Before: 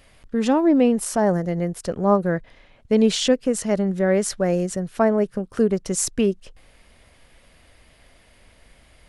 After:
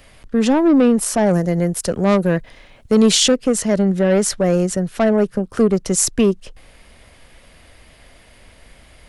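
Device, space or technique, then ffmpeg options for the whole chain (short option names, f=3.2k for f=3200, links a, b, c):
one-band saturation: -filter_complex "[0:a]acrossover=split=220|3900[a][b][c];[b]asoftclip=type=tanh:threshold=-17.5dB[d];[a][d][c]amix=inputs=3:normalize=0,asettb=1/sr,asplit=3[e][f][g];[e]atrim=end=1.304[h];[f]atrim=start=1.3:end=3.32,asetpts=PTS-STARTPTS,afade=t=in:d=0.004:c=qsin,afade=t=out:st=2.016:d=0.004:c=qsin,highshelf=f=6.6k:g=10[i];[g]atrim=start=3.316[j];[h][i]acrossfade=d=0.004:c1=hsin:c2=qsin[k];[k][j]acrossfade=d=0.004:c1=qsin:c2=hsin,volume=6.5dB"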